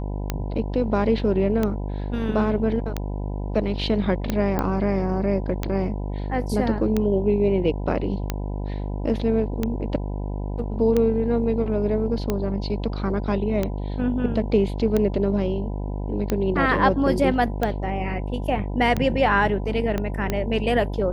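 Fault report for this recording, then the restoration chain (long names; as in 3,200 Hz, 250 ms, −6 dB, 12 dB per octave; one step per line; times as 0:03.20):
mains buzz 50 Hz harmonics 20 −28 dBFS
scratch tick 45 rpm −10 dBFS
0:04.59: click −11 dBFS
0:19.98: click −13 dBFS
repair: click removal
hum removal 50 Hz, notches 20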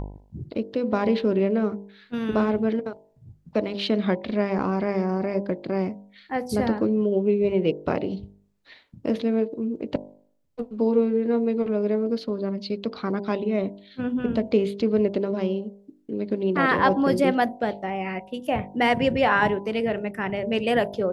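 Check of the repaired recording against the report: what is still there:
0:19.98: click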